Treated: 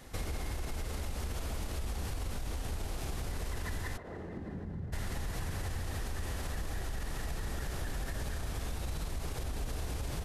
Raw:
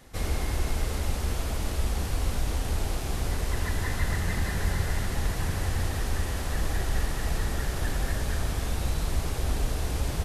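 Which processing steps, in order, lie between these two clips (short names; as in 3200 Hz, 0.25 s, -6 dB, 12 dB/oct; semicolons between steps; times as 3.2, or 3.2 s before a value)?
limiter -23 dBFS, peak gain reduction 9 dB; 3.96–4.92 band-pass 540 Hz -> 150 Hz, Q 1.4; compressor 3:1, threshold -36 dBFS, peak gain reduction 7.5 dB; gain +1 dB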